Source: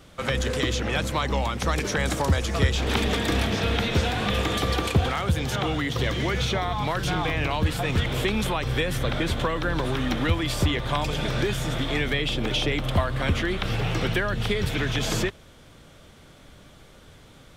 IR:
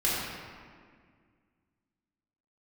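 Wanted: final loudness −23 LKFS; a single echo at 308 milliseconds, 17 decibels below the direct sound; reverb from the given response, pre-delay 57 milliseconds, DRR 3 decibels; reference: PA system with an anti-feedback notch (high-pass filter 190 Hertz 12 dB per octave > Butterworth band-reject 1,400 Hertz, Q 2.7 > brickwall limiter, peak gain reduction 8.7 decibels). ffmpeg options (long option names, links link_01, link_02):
-filter_complex "[0:a]aecho=1:1:308:0.141,asplit=2[link_01][link_02];[1:a]atrim=start_sample=2205,adelay=57[link_03];[link_02][link_03]afir=irnorm=-1:irlink=0,volume=-14.5dB[link_04];[link_01][link_04]amix=inputs=2:normalize=0,highpass=190,asuperstop=centerf=1400:order=8:qfactor=2.7,volume=4dB,alimiter=limit=-13.5dB:level=0:latency=1"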